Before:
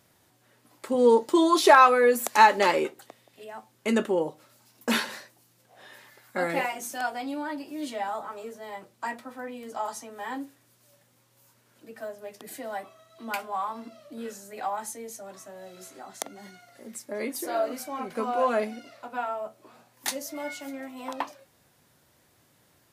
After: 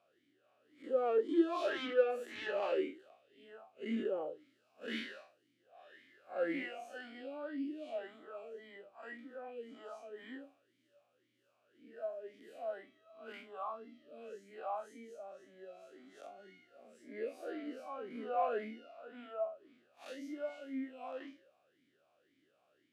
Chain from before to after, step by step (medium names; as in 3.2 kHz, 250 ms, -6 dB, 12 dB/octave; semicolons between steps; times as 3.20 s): spectral blur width 106 ms; saturation -23 dBFS, distortion -8 dB; talking filter a-i 1.9 Hz; trim +4 dB